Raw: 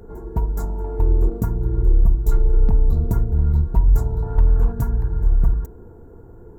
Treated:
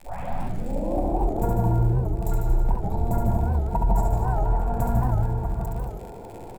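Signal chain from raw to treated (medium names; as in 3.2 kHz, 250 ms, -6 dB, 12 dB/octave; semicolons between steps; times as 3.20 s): tape start-up on the opening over 1.21 s; crackle 59 per s -35 dBFS; peak limiter -15 dBFS, peak gain reduction 8.5 dB; high-order bell 700 Hz +15 dB 1 oct; reverse bouncing-ball echo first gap 70 ms, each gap 1.1×, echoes 5; reverberation RT60 0.50 s, pre-delay 151 ms, DRR 3.5 dB; warped record 78 rpm, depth 160 cents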